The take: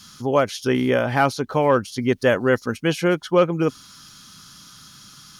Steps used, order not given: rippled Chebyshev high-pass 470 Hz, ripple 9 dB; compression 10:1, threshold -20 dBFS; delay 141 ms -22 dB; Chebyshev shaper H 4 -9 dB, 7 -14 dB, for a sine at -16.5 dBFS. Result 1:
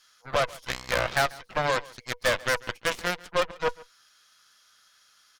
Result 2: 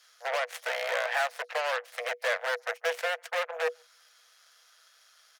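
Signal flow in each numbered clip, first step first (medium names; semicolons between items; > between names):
rippled Chebyshev high-pass > compression > Chebyshev shaper > delay; compression > delay > Chebyshev shaper > rippled Chebyshev high-pass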